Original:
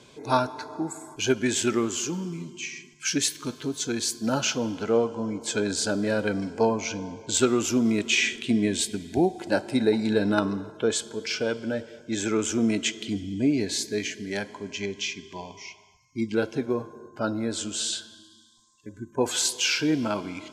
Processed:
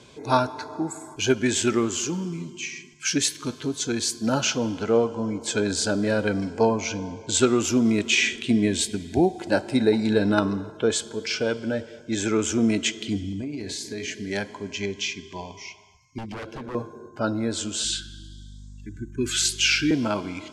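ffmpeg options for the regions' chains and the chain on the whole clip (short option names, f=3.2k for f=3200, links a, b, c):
-filter_complex "[0:a]asettb=1/sr,asplit=3[a][b][c];[a]atrim=end=13.314[d];[b]atrim=start=13.31:end=14.08,asetpts=PTS-STARTPTS,afade=t=in:d=0.004:c=qsin,afade=t=out:st=0.766:d=0.004:c=qsin,bandreject=f=60:t=h:w=6,bandreject=f=120:t=h:w=6,bandreject=f=180:t=h:w=6,bandreject=f=240:t=h:w=6,bandreject=f=300:t=h:w=6,bandreject=f=360:t=h:w=6,bandreject=f=420:t=h:w=6,bandreject=f=480:t=h:w=6,bandreject=f=540:t=h:w=6,bandreject=f=600:t=h:w=6,asplit=2[e][f];[f]adelay=41,volume=-13.5dB[g];[e][g]amix=inputs=2:normalize=0,atrim=end_sample=33957,acompressor=threshold=-30dB:ratio=12:attack=3.2:release=140:knee=1:detection=peak[h];[c]atrim=start=14.076[i];[d][h]acrossfade=d=0.004:c1=hsin:c2=qsin[j];[j][i]acrossfade=d=0.004:c1=qsin:c2=hsin,asettb=1/sr,asplit=3[k][l][m];[k]atrim=end=16.184[n];[l]atrim=start=16.18:end=16.75,asetpts=PTS-STARTPTS,afade=t=in:d=0.004:c=qsin,afade=t=out:st=0.566:d=0.004:c=qsin,highshelf=f=5.3k:g=-11.5,acompressor=threshold=-29dB:ratio=3:attack=3.2:release=140:knee=1:detection=peak,aeval=exprs='0.0251*(abs(mod(val(0)/0.0251+3,4)-2)-1)':c=same[o];[m]atrim=start=16.746[p];[n][o]acrossfade=d=0.004:c1=hsin:c2=qsin[q];[q][p]acrossfade=d=0.004:c1=qsin:c2=hsin,asettb=1/sr,asplit=3[r][s][t];[r]atrim=end=17.844[u];[s]atrim=start=17.84:end=19.91,asetpts=PTS-STARTPTS,afade=t=in:d=0.004:c=qsin,afade=t=out:st=2.066:d=0.004:c=qsin,equalizer=f=2.4k:w=1.7:g=3.5,aeval=exprs='val(0)+0.00562*(sin(2*PI*50*n/s)+sin(2*PI*2*50*n/s)/2+sin(2*PI*3*50*n/s)/3+sin(2*PI*4*50*n/s)/4+sin(2*PI*5*50*n/s)/5)':c=same,asuperstop=centerf=690:order=12:qfactor=0.82[v];[t]atrim=start=19.906[w];[u][v]acrossfade=d=0.004:c1=hsin:c2=qsin[x];[x][w]acrossfade=d=0.004:c1=qsin:c2=hsin,lowpass=11k,equalizer=f=75:t=o:w=0.89:g=6,volume=2dB"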